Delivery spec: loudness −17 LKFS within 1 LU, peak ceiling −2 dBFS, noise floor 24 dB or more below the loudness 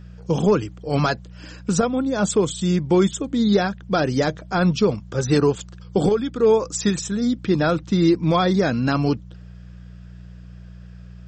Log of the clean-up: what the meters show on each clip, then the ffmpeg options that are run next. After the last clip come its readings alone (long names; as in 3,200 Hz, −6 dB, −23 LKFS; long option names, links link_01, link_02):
mains hum 60 Hz; hum harmonics up to 180 Hz; level of the hum −35 dBFS; integrated loudness −21.0 LKFS; sample peak −7.0 dBFS; target loudness −17.0 LKFS
→ -af "bandreject=frequency=60:width_type=h:width=4,bandreject=frequency=120:width_type=h:width=4,bandreject=frequency=180:width_type=h:width=4"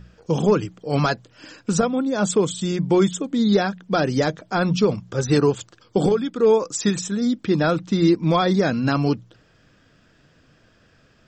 mains hum none found; integrated loudness −21.0 LKFS; sample peak −7.0 dBFS; target loudness −17.0 LKFS
→ -af "volume=4dB"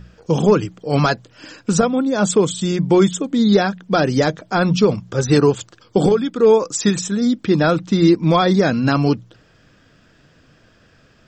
integrated loudness −17.0 LKFS; sample peak −3.0 dBFS; background noise floor −54 dBFS